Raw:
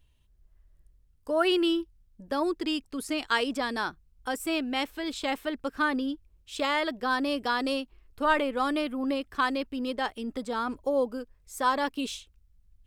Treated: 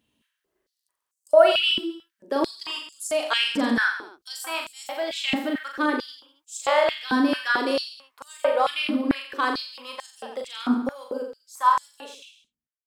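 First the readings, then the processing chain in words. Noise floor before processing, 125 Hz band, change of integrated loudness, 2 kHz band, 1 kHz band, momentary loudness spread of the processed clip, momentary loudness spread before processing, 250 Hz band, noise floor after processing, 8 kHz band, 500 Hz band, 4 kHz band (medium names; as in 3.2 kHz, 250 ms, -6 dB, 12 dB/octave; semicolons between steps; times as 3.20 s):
-64 dBFS, no reading, +5.0 dB, +4.5 dB, +4.0 dB, 16 LU, 10 LU, +2.5 dB, -84 dBFS, +5.5 dB, +6.0 dB, +7.0 dB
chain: fade out at the end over 2.20 s; reverse bouncing-ball echo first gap 40 ms, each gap 1.15×, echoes 5; step-sequenced high-pass 4.5 Hz 230–7200 Hz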